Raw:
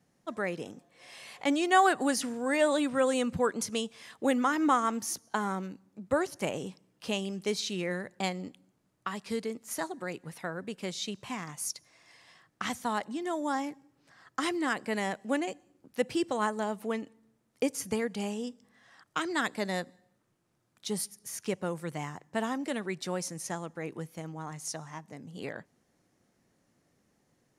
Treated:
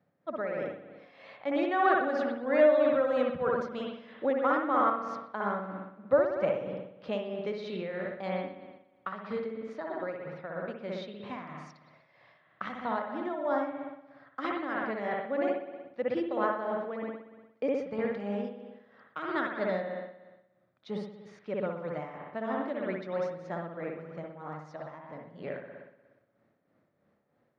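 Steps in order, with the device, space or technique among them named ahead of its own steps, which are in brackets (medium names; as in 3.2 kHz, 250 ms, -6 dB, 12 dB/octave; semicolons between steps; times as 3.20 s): combo amplifier with spring reverb and tremolo (spring tank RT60 1.1 s, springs 59 ms, chirp 65 ms, DRR -0.5 dB; tremolo 3.1 Hz, depth 52%; cabinet simulation 82–3500 Hz, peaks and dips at 580 Hz +10 dB, 1.3 kHz +4 dB, 2.9 kHz -7 dB); trim -3.5 dB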